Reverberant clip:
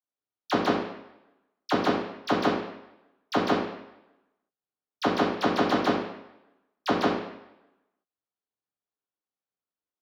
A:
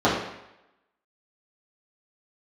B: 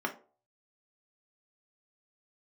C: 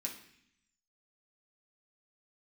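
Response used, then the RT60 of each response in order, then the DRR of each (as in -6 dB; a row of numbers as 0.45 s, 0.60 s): A; 0.85 s, 0.40 s, 0.65 s; -9.5 dB, 0.5 dB, -2.0 dB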